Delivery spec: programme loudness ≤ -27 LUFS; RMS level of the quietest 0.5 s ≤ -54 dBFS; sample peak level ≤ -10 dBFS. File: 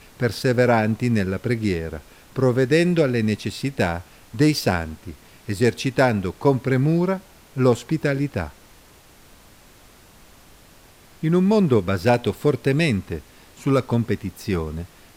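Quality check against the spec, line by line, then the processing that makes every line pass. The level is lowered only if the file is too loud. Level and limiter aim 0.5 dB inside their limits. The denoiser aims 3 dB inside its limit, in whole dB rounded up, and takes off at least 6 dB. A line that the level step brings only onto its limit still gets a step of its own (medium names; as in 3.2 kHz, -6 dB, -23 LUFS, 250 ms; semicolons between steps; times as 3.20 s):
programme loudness -21.5 LUFS: fail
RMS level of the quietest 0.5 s -50 dBFS: fail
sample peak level -5.0 dBFS: fail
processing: trim -6 dB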